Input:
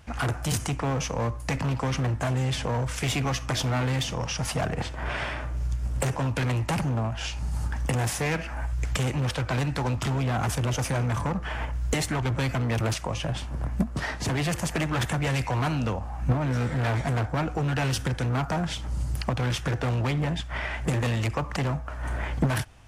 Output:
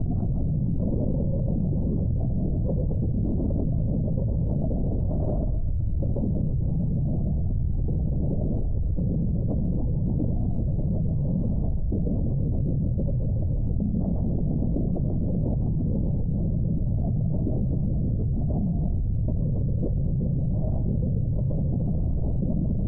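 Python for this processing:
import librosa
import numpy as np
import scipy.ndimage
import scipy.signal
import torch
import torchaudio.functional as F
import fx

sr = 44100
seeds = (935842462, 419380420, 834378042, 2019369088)

y = scipy.signal.sosfilt(scipy.signal.butter(6, 520.0, 'lowpass', fs=sr, output='sos'), x)
y = fx.peak_eq(y, sr, hz=400.0, db=-12.0, octaves=0.85)
y = fx.doubler(y, sr, ms=26.0, db=-8)
y = fx.echo_feedback(y, sr, ms=137, feedback_pct=54, wet_db=-4.5)
y = fx.lpc_vocoder(y, sr, seeds[0], excitation='whisper', order=10)
y = fx.env_flatten(y, sr, amount_pct=100)
y = y * 10.0 ** (-5.5 / 20.0)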